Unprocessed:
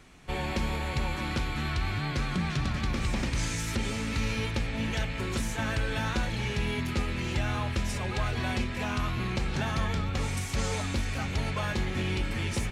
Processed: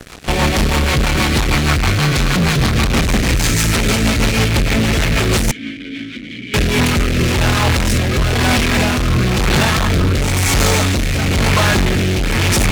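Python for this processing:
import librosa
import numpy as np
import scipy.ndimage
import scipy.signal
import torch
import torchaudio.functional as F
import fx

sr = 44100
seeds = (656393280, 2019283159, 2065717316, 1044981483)

y = fx.fuzz(x, sr, gain_db=44.0, gate_db=-51.0)
y = fx.vowel_filter(y, sr, vowel='i', at=(5.51, 6.54))
y = fx.rotary_switch(y, sr, hz=6.3, then_hz=1.0, switch_at_s=6.13)
y = y * librosa.db_to_amplitude(2.0)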